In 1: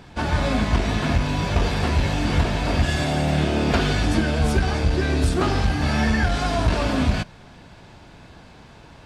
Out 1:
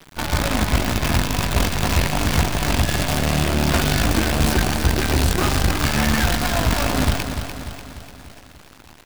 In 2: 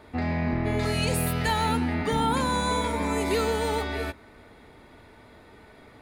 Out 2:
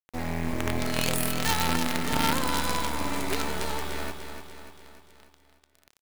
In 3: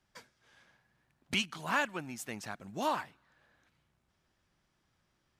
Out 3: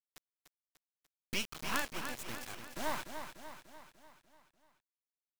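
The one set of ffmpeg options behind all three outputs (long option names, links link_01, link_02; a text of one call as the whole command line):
ffmpeg -i in.wav -filter_complex "[0:a]equalizer=frequency=460:width=6.5:gain=-7,acrusher=bits=4:dc=4:mix=0:aa=0.000001,asplit=2[link_01][link_02];[link_02]aecho=0:1:295|590|885|1180|1475|1770:0.398|0.215|0.116|0.0627|0.0339|0.0183[link_03];[link_01][link_03]amix=inputs=2:normalize=0" out.wav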